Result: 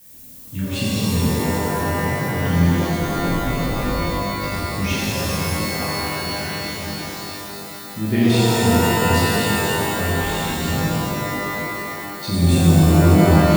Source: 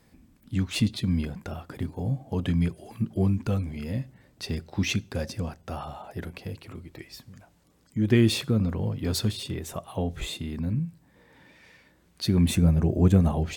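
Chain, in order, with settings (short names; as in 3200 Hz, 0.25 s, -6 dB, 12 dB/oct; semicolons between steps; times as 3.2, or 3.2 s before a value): 2.71–4.52 ring modulator 120 Hz -> 25 Hz; added noise violet -46 dBFS; shimmer reverb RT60 3.2 s, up +12 st, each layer -2 dB, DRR -9.5 dB; gain -4 dB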